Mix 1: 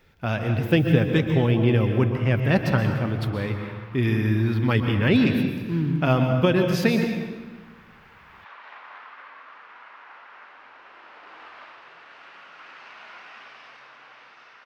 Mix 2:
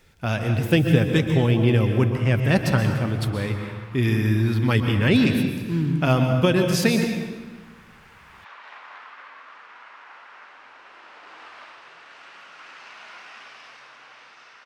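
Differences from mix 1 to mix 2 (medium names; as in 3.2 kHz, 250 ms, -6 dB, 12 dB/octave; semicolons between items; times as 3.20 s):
speech: add bass shelf 130 Hz +3 dB; master: add peaking EQ 8.6 kHz +13.5 dB 1.3 oct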